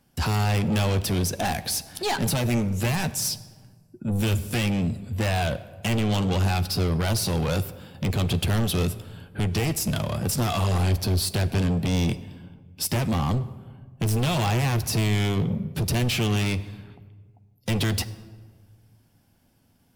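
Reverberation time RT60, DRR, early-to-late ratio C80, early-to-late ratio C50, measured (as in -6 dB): 1.5 s, 10.0 dB, 17.0 dB, 16.0 dB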